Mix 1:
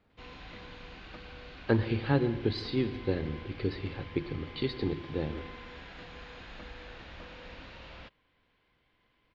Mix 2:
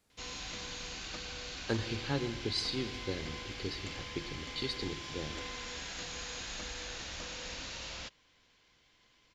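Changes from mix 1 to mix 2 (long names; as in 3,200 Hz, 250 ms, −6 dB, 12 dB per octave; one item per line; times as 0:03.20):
speech −8.5 dB
master: remove high-frequency loss of the air 400 metres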